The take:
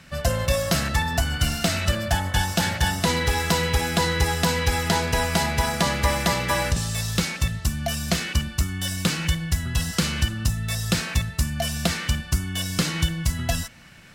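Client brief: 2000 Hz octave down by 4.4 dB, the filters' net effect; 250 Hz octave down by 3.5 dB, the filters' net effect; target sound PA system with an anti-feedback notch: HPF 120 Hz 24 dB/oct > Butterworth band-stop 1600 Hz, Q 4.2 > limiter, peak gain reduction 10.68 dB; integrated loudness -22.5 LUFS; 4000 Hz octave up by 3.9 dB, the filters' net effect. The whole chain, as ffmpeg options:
-af "highpass=f=120:w=0.5412,highpass=f=120:w=1.3066,asuperstop=centerf=1600:order=8:qfactor=4.2,equalizer=f=250:t=o:g=-5.5,equalizer=f=2k:t=o:g=-3.5,equalizer=f=4k:t=o:g=6,volume=4.5dB,alimiter=limit=-12dB:level=0:latency=1"

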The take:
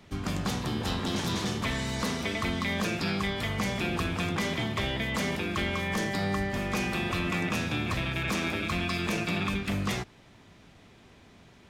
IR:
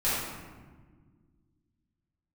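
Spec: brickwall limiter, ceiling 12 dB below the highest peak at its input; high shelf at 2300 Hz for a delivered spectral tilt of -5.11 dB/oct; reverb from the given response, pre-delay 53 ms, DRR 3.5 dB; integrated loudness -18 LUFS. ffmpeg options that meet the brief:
-filter_complex "[0:a]highshelf=f=2.3k:g=-6.5,alimiter=level_in=8.5dB:limit=-24dB:level=0:latency=1,volume=-8.5dB,asplit=2[a][b];[1:a]atrim=start_sample=2205,adelay=53[c];[b][c]afir=irnorm=-1:irlink=0,volume=-15dB[d];[a][d]amix=inputs=2:normalize=0,volume=20dB"

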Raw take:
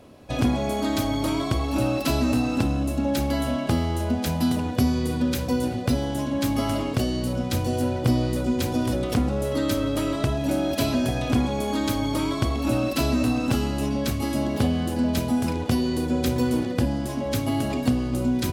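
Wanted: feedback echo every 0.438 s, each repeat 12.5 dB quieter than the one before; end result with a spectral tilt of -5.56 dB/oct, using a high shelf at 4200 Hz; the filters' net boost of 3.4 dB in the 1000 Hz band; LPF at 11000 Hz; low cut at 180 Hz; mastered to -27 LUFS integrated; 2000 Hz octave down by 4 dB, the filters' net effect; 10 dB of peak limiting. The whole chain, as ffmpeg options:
-af "highpass=180,lowpass=11k,equalizer=f=1k:t=o:g=6,equalizer=f=2k:t=o:g=-6.5,highshelf=f=4.2k:g=-4,alimiter=limit=-19dB:level=0:latency=1,aecho=1:1:438|876|1314:0.237|0.0569|0.0137,volume=0.5dB"

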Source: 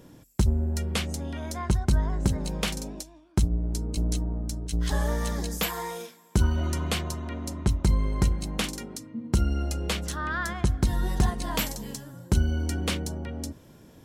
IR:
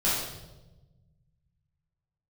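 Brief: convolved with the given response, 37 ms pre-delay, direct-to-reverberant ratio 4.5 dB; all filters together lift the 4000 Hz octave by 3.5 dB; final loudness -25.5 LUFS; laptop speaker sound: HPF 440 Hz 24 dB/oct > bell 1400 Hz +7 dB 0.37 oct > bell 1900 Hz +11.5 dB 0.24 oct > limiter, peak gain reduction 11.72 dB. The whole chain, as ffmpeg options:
-filter_complex "[0:a]equalizer=f=4k:t=o:g=4,asplit=2[a][b];[1:a]atrim=start_sample=2205,adelay=37[c];[b][c]afir=irnorm=-1:irlink=0,volume=-16dB[d];[a][d]amix=inputs=2:normalize=0,highpass=f=440:w=0.5412,highpass=f=440:w=1.3066,equalizer=f=1.4k:t=o:w=0.37:g=7,equalizer=f=1.9k:t=o:w=0.24:g=11.5,volume=8dB,alimiter=limit=-13.5dB:level=0:latency=1"

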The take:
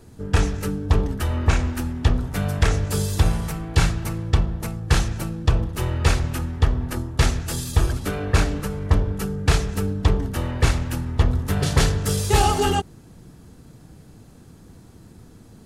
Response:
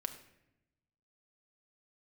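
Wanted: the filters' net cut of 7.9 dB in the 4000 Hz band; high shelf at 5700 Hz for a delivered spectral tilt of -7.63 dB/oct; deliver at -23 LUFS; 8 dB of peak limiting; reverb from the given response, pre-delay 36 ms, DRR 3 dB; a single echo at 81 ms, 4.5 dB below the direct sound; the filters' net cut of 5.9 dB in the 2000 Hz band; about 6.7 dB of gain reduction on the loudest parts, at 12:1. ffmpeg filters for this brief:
-filter_complex "[0:a]equalizer=f=2k:t=o:g=-5.5,equalizer=f=4k:t=o:g=-6,highshelf=f=5.7k:g=-6.5,acompressor=threshold=-18dB:ratio=12,alimiter=limit=-16.5dB:level=0:latency=1,aecho=1:1:81:0.596,asplit=2[a][b];[1:a]atrim=start_sample=2205,adelay=36[c];[b][c]afir=irnorm=-1:irlink=0,volume=-2.5dB[d];[a][d]amix=inputs=2:normalize=0,volume=1.5dB"

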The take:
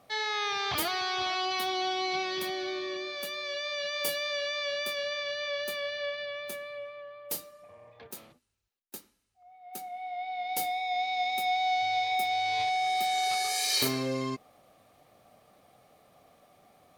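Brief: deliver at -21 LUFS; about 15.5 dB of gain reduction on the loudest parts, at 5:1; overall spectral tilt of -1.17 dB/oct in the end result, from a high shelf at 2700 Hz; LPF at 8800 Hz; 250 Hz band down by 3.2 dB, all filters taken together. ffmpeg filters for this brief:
-af "lowpass=8.8k,equalizer=f=250:t=o:g=-4.5,highshelf=f=2.7k:g=5,acompressor=threshold=-39dB:ratio=5,volume=19dB"

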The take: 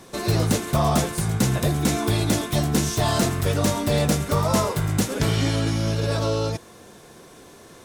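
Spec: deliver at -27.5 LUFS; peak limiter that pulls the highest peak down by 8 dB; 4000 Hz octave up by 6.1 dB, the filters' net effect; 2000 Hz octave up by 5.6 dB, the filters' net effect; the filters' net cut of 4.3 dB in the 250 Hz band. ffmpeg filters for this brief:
-af "equalizer=f=250:t=o:g=-6.5,equalizer=f=2k:t=o:g=5.5,equalizer=f=4k:t=o:g=6,volume=-2dB,alimiter=limit=-18dB:level=0:latency=1"

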